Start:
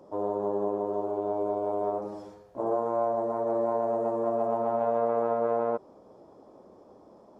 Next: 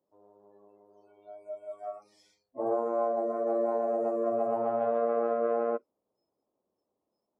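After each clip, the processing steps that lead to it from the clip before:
noise reduction from a noise print of the clip's start 30 dB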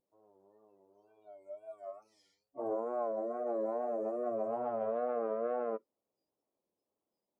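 tape wow and flutter 100 cents
level −6.5 dB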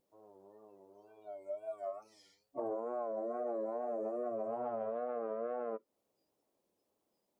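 downward compressor, threshold −42 dBFS, peak gain reduction 11.5 dB
level +6.5 dB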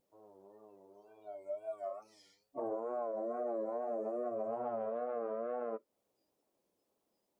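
flanger 0.67 Hz, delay 1.2 ms, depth 5.8 ms, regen −75%
level +4.5 dB

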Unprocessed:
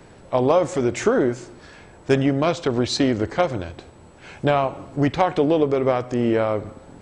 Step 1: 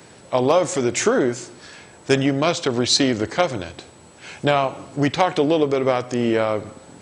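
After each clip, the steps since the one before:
high-pass filter 100 Hz
high-shelf EQ 2,700 Hz +11 dB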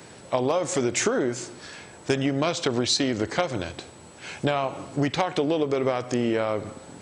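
downward compressor, threshold −20 dBFS, peak gain reduction 8.5 dB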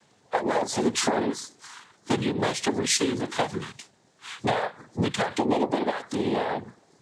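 noise reduction from a noise print of the clip's start 15 dB
cochlear-implant simulation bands 6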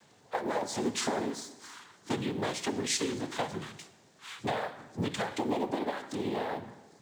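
mu-law and A-law mismatch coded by mu
convolution reverb RT60 1.1 s, pre-delay 6 ms, DRR 11.5 dB
level −8 dB

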